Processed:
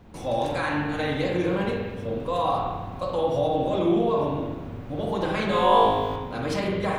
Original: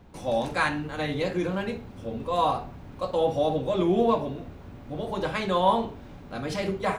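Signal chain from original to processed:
brickwall limiter −20.5 dBFS, peak gain reduction 10.5 dB
0:05.47–0:06.16: flutter between parallel walls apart 3.3 metres, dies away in 1.1 s
spring reverb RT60 1.2 s, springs 41/50 ms, chirp 30 ms, DRR −0.5 dB
level +1.5 dB

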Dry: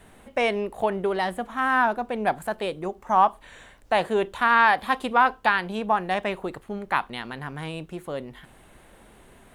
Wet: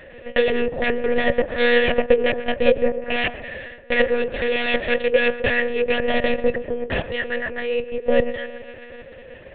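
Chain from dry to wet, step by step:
sine wavefolder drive 17 dB, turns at −6 dBFS
formant filter e
feedback echo with a low-pass in the loop 130 ms, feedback 61%, low-pass 1,400 Hz, level −12 dB
one-pitch LPC vocoder at 8 kHz 240 Hz
level +2.5 dB

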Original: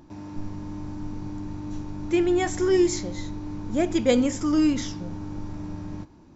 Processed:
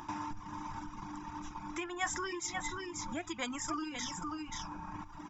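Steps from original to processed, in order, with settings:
Butterworth band-reject 4,300 Hz, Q 5.7
parametric band 320 Hz +6.5 dB 0.27 octaves
single-tap delay 639 ms −8 dB
in parallel at −11 dB: soft clipping −17 dBFS, distortion −11 dB
on the sum: downward compressor 4 to 1, threshold −33 dBFS, peak gain reduction 19 dB
low shelf with overshoot 700 Hz −11.5 dB, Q 3
tempo change 1.2×
reverb reduction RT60 1.5 s
mains-hum notches 50/100 Hz
level +7 dB

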